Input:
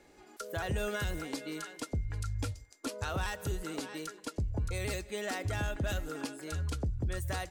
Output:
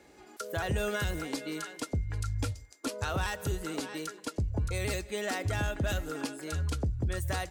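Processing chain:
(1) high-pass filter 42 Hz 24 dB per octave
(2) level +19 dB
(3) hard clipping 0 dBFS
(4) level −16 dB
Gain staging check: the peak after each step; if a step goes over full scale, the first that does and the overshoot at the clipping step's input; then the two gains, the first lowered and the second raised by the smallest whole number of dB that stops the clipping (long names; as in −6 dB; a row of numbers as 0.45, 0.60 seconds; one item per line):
−21.0, −2.0, −2.0, −18.0 dBFS
no step passes full scale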